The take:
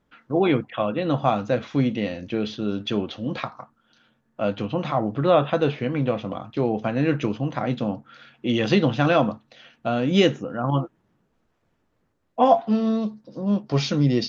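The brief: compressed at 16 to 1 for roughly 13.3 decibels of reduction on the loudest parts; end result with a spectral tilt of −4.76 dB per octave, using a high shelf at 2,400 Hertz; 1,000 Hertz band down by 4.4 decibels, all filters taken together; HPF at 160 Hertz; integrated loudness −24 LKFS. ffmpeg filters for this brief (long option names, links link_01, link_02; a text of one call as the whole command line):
ffmpeg -i in.wav -af "highpass=160,equalizer=frequency=1000:width_type=o:gain=-7.5,highshelf=frequency=2400:gain=3.5,acompressor=threshold=-26dB:ratio=16,volume=8.5dB" out.wav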